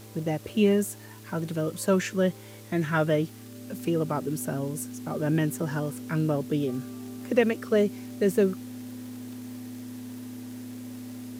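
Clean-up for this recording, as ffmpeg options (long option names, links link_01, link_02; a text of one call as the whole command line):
ffmpeg -i in.wav -af "adeclick=threshold=4,bandreject=frequency=108.9:width_type=h:width=4,bandreject=frequency=217.8:width_type=h:width=4,bandreject=frequency=326.7:width_type=h:width=4,bandreject=frequency=435.6:width_type=h:width=4,bandreject=frequency=250:width=30,afwtdn=0.0025" out.wav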